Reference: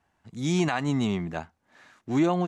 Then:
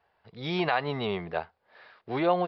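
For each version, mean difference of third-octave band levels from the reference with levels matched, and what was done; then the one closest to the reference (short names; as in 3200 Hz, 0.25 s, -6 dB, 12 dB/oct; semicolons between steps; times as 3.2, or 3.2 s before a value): 5.5 dB: downsampling 11025 Hz; resonant low shelf 360 Hz -7 dB, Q 3; gain +1 dB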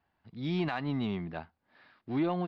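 2.0 dB: downsampling 11025 Hz; in parallel at -9 dB: soft clip -22.5 dBFS, distortion -13 dB; on the sum: gain -8.5 dB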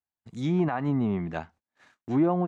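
4.0 dB: treble ducked by the level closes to 1200 Hz, closed at -21.5 dBFS; gate -53 dBFS, range -29 dB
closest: second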